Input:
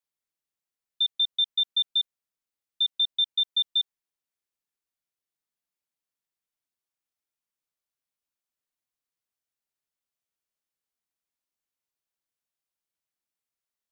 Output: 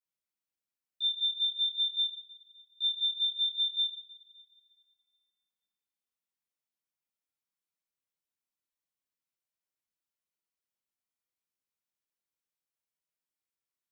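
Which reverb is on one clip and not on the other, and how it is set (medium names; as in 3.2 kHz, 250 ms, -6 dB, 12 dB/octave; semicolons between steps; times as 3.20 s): two-slope reverb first 0.48 s, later 2.1 s, from -18 dB, DRR -8.5 dB; trim -13.5 dB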